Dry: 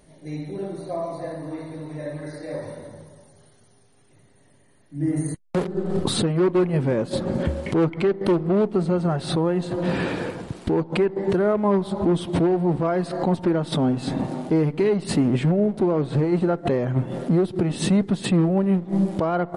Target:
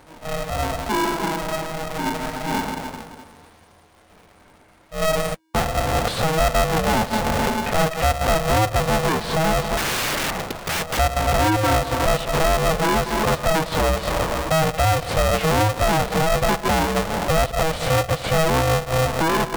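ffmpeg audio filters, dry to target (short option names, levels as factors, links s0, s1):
-filter_complex "[0:a]asplit=2[s0][s1];[s1]highpass=f=720:p=1,volume=11.2,asoftclip=type=tanh:threshold=0.282[s2];[s0][s2]amix=inputs=2:normalize=0,lowpass=f=1100:p=1,volume=0.501,asettb=1/sr,asplit=3[s3][s4][s5];[s3]atrim=end=9.774[s6];[s4]atrim=start=9.77:end=10.99,asetpts=PTS-STARTPTS,afade=t=in:d=0.004:c=qsin,afade=t=out:st=1.216:d=0.004:c=qsin,aeval=exprs='(mod(8.91*val(0)+1,2)-1)/8.91':c=same[s7];[s5]atrim=start=10.986[s8];[s6][s7]acrossfade=d=0.004:c1=hsin:c2=qsin[s9];[s9][s8]acrossfade=d=0.004:c1=qsin:c2=hsin,aeval=exprs='val(0)*sgn(sin(2*PI*320*n/s))':c=same"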